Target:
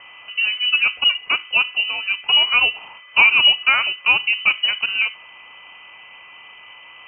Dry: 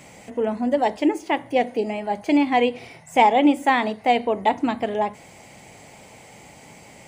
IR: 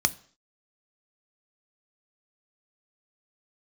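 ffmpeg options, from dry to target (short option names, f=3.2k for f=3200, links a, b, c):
-af "aeval=exprs='val(0)+0.00447*sin(2*PI*1200*n/s)':c=same,lowpass=f=2.7k:t=q:w=0.5098,lowpass=f=2.7k:t=q:w=0.6013,lowpass=f=2.7k:t=q:w=0.9,lowpass=f=2.7k:t=q:w=2.563,afreqshift=-3200,volume=2.5dB"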